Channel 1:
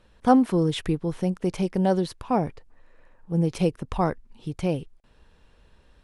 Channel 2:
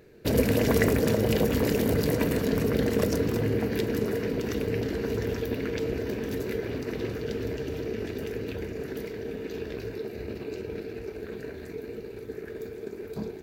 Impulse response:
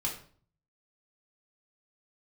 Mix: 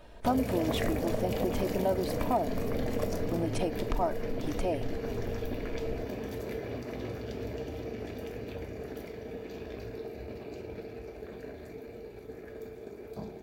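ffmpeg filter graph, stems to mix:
-filter_complex "[0:a]asubboost=boost=5:cutoff=58,aecho=1:1:3.2:0.65,acompressor=threshold=-35dB:ratio=2,volume=2.5dB[link_01];[1:a]volume=-10.5dB,asplit=2[link_02][link_03];[link_03]volume=-5dB[link_04];[2:a]atrim=start_sample=2205[link_05];[link_04][link_05]afir=irnorm=-1:irlink=0[link_06];[link_01][link_02][link_06]amix=inputs=3:normalize=0,equalizer=frequency=700:width=2.6:gain=12,acompressor=threshold=-28dB:ratio=2"

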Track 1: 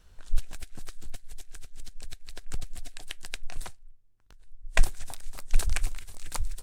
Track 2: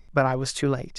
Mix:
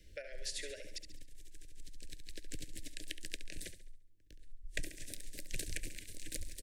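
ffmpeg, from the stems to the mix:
ffmpeg -i stem1.wav -i stem2.wav -filter_complex "[0:a]equalizer=frequency=310:width=5.1:gain=10,volume=-2dB,asplit=2[link_01][link_02];[link_02]volume=-12.5dB[link_03];[1:a]highpass=frequency=610:width=0.5412,highpass=frequency=610:width=1.3066,volume=-6dB,asplit=3[link_04][link_05][link_06];[link_05]volume=-9.5dB[link_07];[link_06]apad=whole_len=292087[link_08];[link_01][link_08]sidechaincompress=threshold=-48dB:ratio=8:attack=16:release=1440[link_09];[link_03][link_07]amix=inputs=2:normalize=0,aecho=0:1:69|138|207|276|345|414:1|0.43|0.185|0.0795|0.0342|0.0147[link_10];[link_09][link_04][link_10]amix=inputs=3:normalize=0,acrossover=split=110|820[link_11][link_12][link_13];[link_11]acompressor=threshold=-40dB:ratio=4[link_14];[link_12]acompressor=threshold=-46dB:ratio=4[link_15];[link_13]acompressor=threshold=-39dB:ratio=4[link_16];[link_14][link_15][link_16]amix=inputs=3:normalize=0,asuperstop=centerf=1000:order=12:qfactor=0.93" out.wav

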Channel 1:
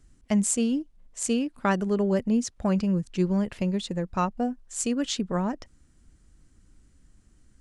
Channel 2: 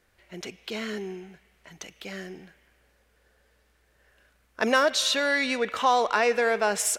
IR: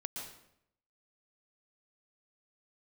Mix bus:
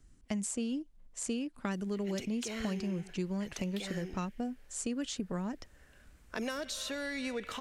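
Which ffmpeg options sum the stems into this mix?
-filter_complex "[0:a]volume=-3.5dB[link_01];[1:a]acompressor=threshold=-35dB:ratio=1.5,adelay=1750,volume=-1dB[link_02];[link_01][link_02]amix=inputs=2:normalize=0,acrossover=split=390|1900|6900[link_03][link_04][link_05][link_06];[link_03]acompressor=threshold=-35dB:ratio=4[link_07];[link_04]acompressor=threshold=-44dB:ratio=4[link_08];[link_05]acompressor=threshold=-44dB:ratio=4[link_09];[link_06]acompressor=threshold=-42dB:ratio=4[link_10];[link_07][link_08][link_09][link_10]amix=inputs=4:normalize=0"

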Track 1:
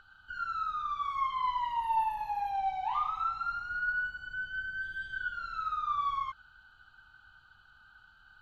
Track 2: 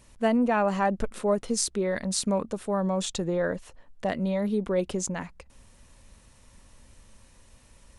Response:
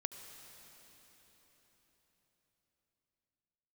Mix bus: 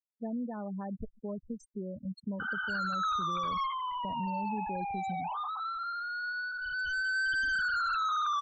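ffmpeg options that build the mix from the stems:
-filter_complex "[0:a]asplit=2[link_01][link_02];[link_02]highpass=frequency=720:poles=1,volume=38dB,asoftclip=type=tanh:threshold=-20.5dB[link_03];[link_01][link_03]amix=inputs=2:normalize=0,lowpass=frequency=2900:poles=1,volume=-6dB,adelay=2400,volume=4dB,afade=type=out:start_time=3.4:duration=0.38:silence=0.421697,afade=type=in:start_time=6.57:duration=0.79:silence=0.421697,asplit=2[link_04][link_05];[link_05]volume=-12.5dB[link_06];[1:a]equalizer=frequency=120:width_type=o:width=2.7:gain=12.5,acrossover=split=150[link_07][link_08];[link_08]acompressor=threshold=-24dB:ratio=2[link_09];[link_07][link_09]amix=inputs=2:normalize=0,volume=-15dB[link_10];[2:a]atrim=start_sample=2205[link_11];[link_06][link_11]afir=irnorm=-1:irlink=0[link_12];[link_04][link_10][link_12]amix=inputs=3:normalize=0,afftfilt=real='re*gte(hypot(re,im),0.02)':imag='im*gte(hypot(re,im),0.02)':win_size=1024:overlap=0.75,alimiter=level_in=3dB:limit=-24dB:level=0:latency=1:release=35,volume=-3dB"

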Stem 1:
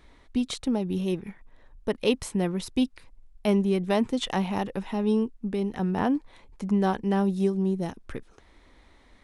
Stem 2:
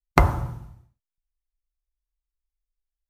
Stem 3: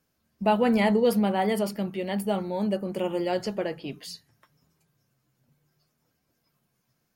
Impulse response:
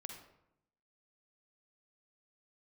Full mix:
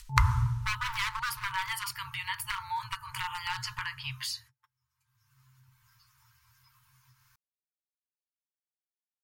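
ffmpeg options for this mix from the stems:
-filter_complex "[1:a]lowpass=5900,aemphasis=mode=production:type=50fm,acompressor=threshold=-19dB:ratio=3,volume=0.5dB[link_01];[2:a]agate=range=-39dB:threshold=-54dB:ratio=16:detection=peak,equalizer=frequency=1100:width_type=o:width=1.4:gain=4,aeval=exprs='0.119*(abs(mod(val(0)/0.119+3,4)-2)-1)':channel_layout=same,adelay=200,volume=-5dB[link_02];[link_01][link_02]amix=inputs=2:normalize=0,afftfilt=real='re*(1-between(b*sr/4096,130,880))':imag='im*(1-between(b*sr/4096,130,880))':win_size=4096:overlap=0.75,equalizer=frequency=130:width=3.2:gain=7,acompressor=mode=upward:threshold=-25dB:ratio=2.5"

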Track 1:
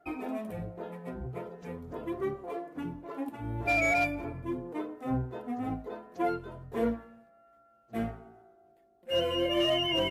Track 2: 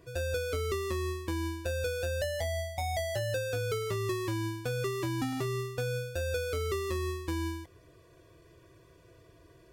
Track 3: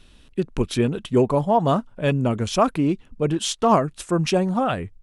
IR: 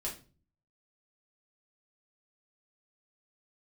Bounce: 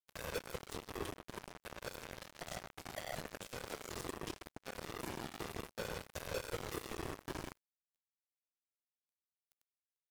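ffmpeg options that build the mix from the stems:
-filter_complex "[0:a]aexciter=amount=10.5:drive=5.1:freq=3400,acompressor=mode=upward:threshold=-28dB:ratio=2.5,volume=-14dB[link_01];[1:a]volume=1dB,asplit=2[link_02][link_03];[link_03]volume=-7.5dB[link_04];[2:a]acompressor=threshold=-26dB:ratio=6,volume=-4.5dB,asplit=4[link_05][link_06][link_07][link_08];[link_06]volume=-11dB[link_09];[link_07]volume=-14dB[link_10];[link_08]apad=whole_len=429087[link_11];[link_02][link_11]sidechaincompress=threshold=-38dB:ratio=3:attack=46:release=373[link_12];[link_01][link_05]amix=inputs=2:normalize=0,highshelf=frequency=3700:gain=11.5,acompressor=threshold=-38dB:ratio=16,volume=0dB[link_13];[3:a]atrim=start_sample=2205[link_14];[link_04][link_09]amix=inputs=2:normalize=0[link_15];[link_15][link_14]afir=irnorm=-1:irlink=0[link_16];[link_10]aecho=0:1:68|136|204|272|340|408|476|544|612:1|0.59|0.348|0.205|0.121|0.0715|0.0422|0.0249|0.0147[link_17];[link_12][link_13][link_16][link_17]amix=inputs=4:normalize=0,afftfilt=real='hypot(re,im)*cos(2*PI*random(0))':imag='hypot(re,im)*sin(2*PI*random(1))':win_size=512:overlap=0.75,acrusher=bits=4:mix=0:aa=0.5,alimiter=level_in=6dB:limit=-24dB:level=0:latency=1:release=114,volume=-6dB"

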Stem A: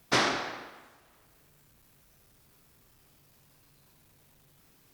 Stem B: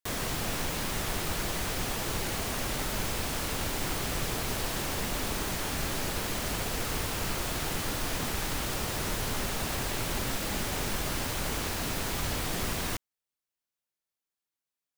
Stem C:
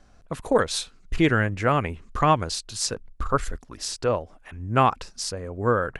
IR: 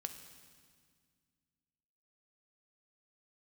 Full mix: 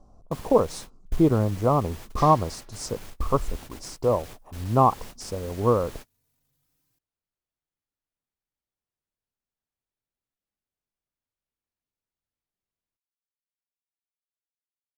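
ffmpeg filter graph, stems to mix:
-filter_complex "[0:a]bass=frequency=250:gain=4,treble=frequency=4000:gain=7,asplit=2[link_01][link_02];[link_02]adelay=3.3,afreqshift=0.38[link_03];[link_01][link_03]amix=inputs=2:normalize=1,adelay=2050,volume=-14.5dB[link_04];[1:a]asoftclip=type=hard:threshold=-29dB,volume=-11dB[link_05];[2:a]firequalizer=gain_entry='entry(1100,0);entry(1600,-28);entry(5400,-10)':delay=0.05:min_phase=1,volume=1.5dB,asplit=2[link_06][link_07];[link_07]apad=whole_len=660495[link_08];[link_05][link_08]sidechaingate=range=-52dB:threshold=-40dB:ratio=16:detection=peak[link_09];[link_04][link_09][link_06]amix=inputs=3:normalize=0"

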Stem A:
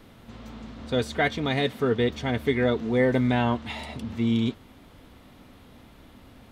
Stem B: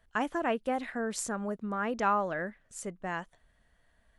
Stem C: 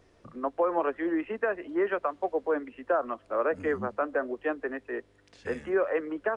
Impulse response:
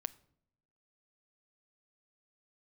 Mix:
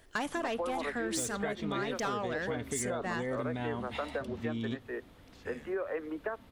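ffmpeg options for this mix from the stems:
-filter_complex "[0:a]alimiter=limit=-15.5dB:level=0:latency=1,adelay=250,volume=-9.5dB,asplit=2[link_01][link_02];[link_02]volume=-5.5dB[link_03];[1:a]highshelf=frequency=2100:gain=11.5,asoftclip=type=tanh:threshold=-26dB,volume=-1.5dB,asplit=2[link_04][link_05];[link_05]volume=-1.5dB[link_06];[2:a]volume=-7dB,asplit=2[link_07][link_08];[link_08]volume=-6.5dB[link_09];[3:a]atrim=start_sample=2205[link_10];[link_03][link_06][link_09]amix=inputs=3:normalize=0[link_11];[link_11][link_10]afir=irnorm=-1:irlink=0[link_12];[link_01][link_04][link_07][link_12]amix=inputs=4:normalize=0,acompressor=threshold=-31dB:ratio=6"

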